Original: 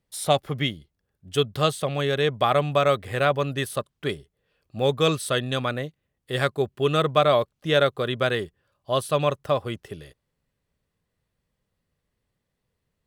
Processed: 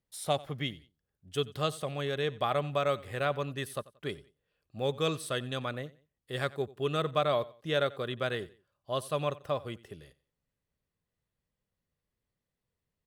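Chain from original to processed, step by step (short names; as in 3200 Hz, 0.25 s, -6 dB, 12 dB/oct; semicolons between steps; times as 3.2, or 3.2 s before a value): feedback echo 90 ms, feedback 32%, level -20.5 dB; gain -9 dB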